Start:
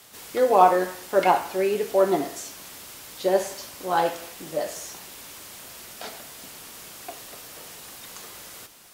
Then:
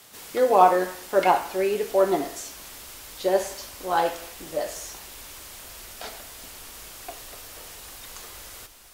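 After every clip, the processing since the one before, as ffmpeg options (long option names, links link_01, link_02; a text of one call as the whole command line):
ffmpeg -i in.wav -af "asubboost=boost=9:cutoff=53" out.wav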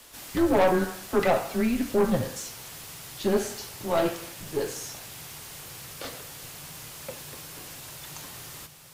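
ffmpeg -i in.wav -af "afreqshift=-170,aeval=exprs='(tanh(7.08*val(0)+0.35)-tanh(0.35))/7.08':channel_layout=same,volume=1dB" out.wav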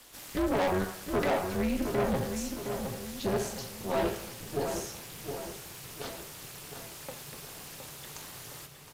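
ffmpeg -i in.wav -filter_complex "[0:a]asoftclip=type=hard:threshold=-21.5dB,tremolo=f=280:d=0.824,asplit=2[link_01][link_02];[link_02]adelay=715,lowpass=frequency=2500:poles=1,volume=-6.5dB,asplit=2[link_03][link_04];[link_04]adelay=715,lowpass=frequency=2500:poles=1,volume=0.48,asplit=2[link_05][link_06];[link_06]adelay=715,lowpass=frequency=2500:poles=1,volume=0.48,asplit=2[link_07][link_08];[link_08]adelay=715,lowpass=frequency=2500:poles=1,volume=0.48,asplit=2[link_09][link_10];[link_10]adelay=715,lowpass=frequency=2500:poles=1,volume=0.48,asplit=2[link_11][link_12];[link_12]adelay=715,lowpass=frequency=2500:poles=1,volume=0.48[link_13];[link_03][link_05][link_07][link_09][link_11][link_13]amix=inputs=6:normalize=0[link_14];[link_01][link_14]amix=inputs=2:normalize=0" out.wav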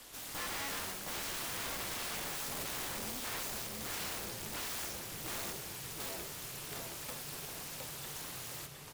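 ffmpeg -i in.wav -af "aeval=exprs='(mod(63.1*val(0)+1,2)-1)/63.1':channel_layout=same,volume=1dB" out.wav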